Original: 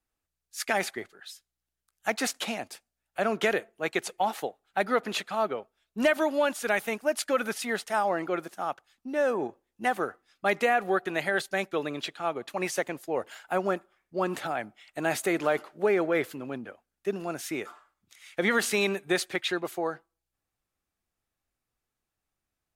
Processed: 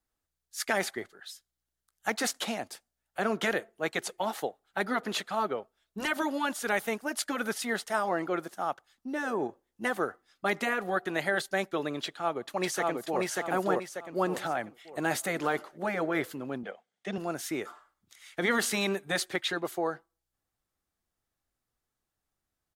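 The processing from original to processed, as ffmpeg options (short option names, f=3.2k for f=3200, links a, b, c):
-filter_complex "[0:a]asplit=2[a][b];[b]afade=t=in:st=12.04:d=0.01,afade=t=out:st=13.2:d=0.01,aecho=0:1:590|1180|1770|2360|2950:0.891251|0.311938|0.109178|0.0382124|0.0133743[c];[a][c]amix=inputs=2:normalize=0,asettb=1/sr,asplit=3[d][e][f];[d]atrim=end=16.634[g];[e]atrim=start=16.63:end=17.18,asetpts=PTS-STARTPTS,afade=t=in:d=0.004:c=qsin,afade=t=out:st=0.546:d=0.004:c=qsin,highpass=190,equalizer=f=200:t=q:w=4:g=6,equalizer=f=290:t=q:w=4:g=-10,equalizer=f=480:t=q:w=4:g=6,equalizer=f=730:t=q:w=4:g=7,equalizer=f=2.1k:t=q:w=4:g=9,equalizer=f=3.3k:t=q:w=4:g=10,lowpass=f=8.6k:w=0.5412,lowpass=f=8.6k:w=1.3066[h];[f]atrim=start=17.176[i];[g][h]acrossfade=d=0.004:c1=hsin:c2=qsin[j];[j][i]acrossfade=d=0.004:c1=qsin:c2=hsin,afftfilt=real='re*lt(hypot(re,im),0.447)':imag='im*lt(hypot(re,im),0.447)':win_size=1024:overlap=0.75,equalizer=f=2.5k:t=o:w=0.33:g=-5.5"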